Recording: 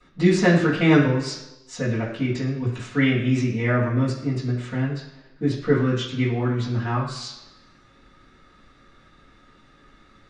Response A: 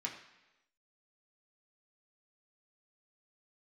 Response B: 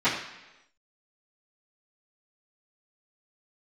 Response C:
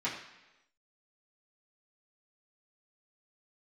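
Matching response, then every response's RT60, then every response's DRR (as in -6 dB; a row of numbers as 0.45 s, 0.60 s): B; 1.0 s, 1.0 s, 1.0 s; -2.0 dB, -17.5 dB, -10.0 dB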